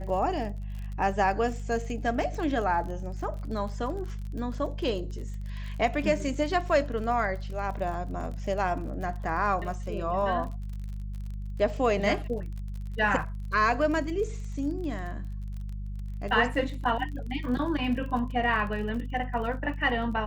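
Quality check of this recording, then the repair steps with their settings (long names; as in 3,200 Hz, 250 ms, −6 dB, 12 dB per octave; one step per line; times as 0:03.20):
surface crackle 42 per second −37 dBFS
mains hum 50 Hz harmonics 4 −35 dBFS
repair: click removal
hum removal 50 Hz, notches 4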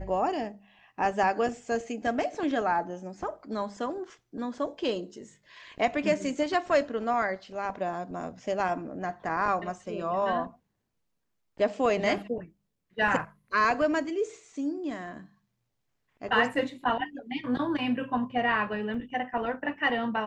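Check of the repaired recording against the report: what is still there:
none of them is left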